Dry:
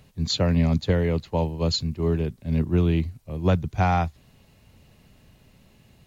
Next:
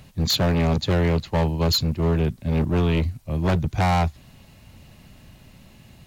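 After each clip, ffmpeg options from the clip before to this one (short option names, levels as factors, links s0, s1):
-af "equalizer=f=440:t=o:w=0.34:g=-7,asoftclip=type=hard:threshold=0.0596,volume=2.24"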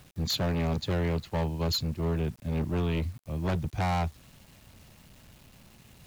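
-af "areverse,acompressor=mode=upward:threshold=0.00708:ratio=2.5,areverse,acrusher=bits=7:mix=0:aa=0.000001,volume=0.398"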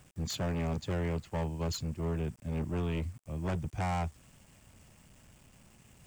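-af "equalizer=f=4000:t=o:w=0.33:g=-9,equalizer=f=8000:t=o:w=0.33:g=8,equalizer=f=12500:t=o:w=0.33:g=-8,volume=0.596"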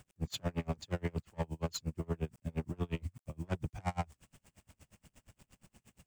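-af "aeval=exprs='val(0)*pow(10,-33*(0.5-0.5*cos(2*PI*8.5*n/s))/20)':c=same,volume=1.26"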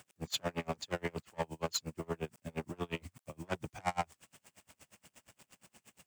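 -af "highpass=f=510:p=1,volume=1.88"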